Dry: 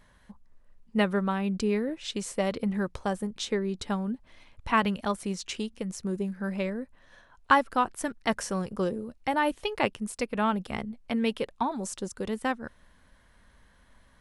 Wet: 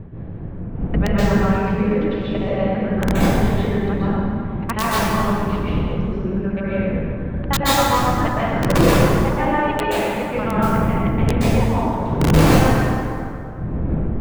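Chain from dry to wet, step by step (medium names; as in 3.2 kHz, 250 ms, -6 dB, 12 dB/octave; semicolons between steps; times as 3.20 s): time reversed locally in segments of 67 ms; wind noise 160 Hz -29 dBFS; low-pass 2.9 kHz 24 dB/octave; integer overflow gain 12.5 dB; plate-style reverb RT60 2.5 s, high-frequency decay 0.55×, pre-delay 115 ms, DRR -9 dB; trim -1 dB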